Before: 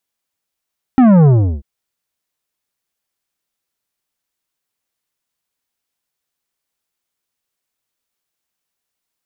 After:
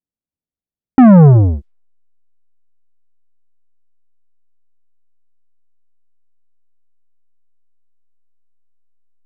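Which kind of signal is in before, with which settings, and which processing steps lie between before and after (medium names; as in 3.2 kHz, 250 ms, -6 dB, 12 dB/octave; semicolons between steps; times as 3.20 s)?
sub drop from 270 Hz, over 0.64 s, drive 11 dB, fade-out 0.36 s, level -6.5 dB
band-stop 370 Hz, Q 12; level-controlled noise filter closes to 310 Hz, open at -14.5 dBFS; in parallel at -7 dB: hysteresis with a dead band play -25.5 dBFS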